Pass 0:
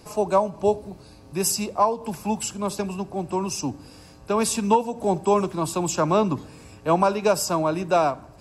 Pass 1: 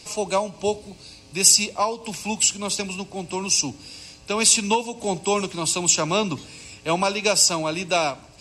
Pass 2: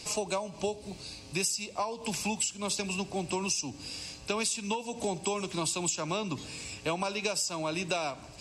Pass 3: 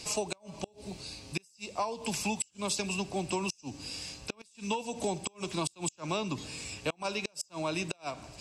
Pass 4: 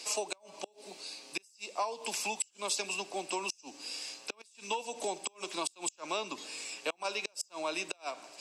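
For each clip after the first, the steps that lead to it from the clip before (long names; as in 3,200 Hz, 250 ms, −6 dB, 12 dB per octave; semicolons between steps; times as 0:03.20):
flat-topped bell 4,400 Hz +14.5 dB 2.4 octaves; level −3 dB
downward compressor 16 to 1, threshold −28 dBFS, peak gain reduction 18.5 dB
gate with flip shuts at −20 dBFS, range −32 dB
Bessel high-pass filter 450 Hz, order 4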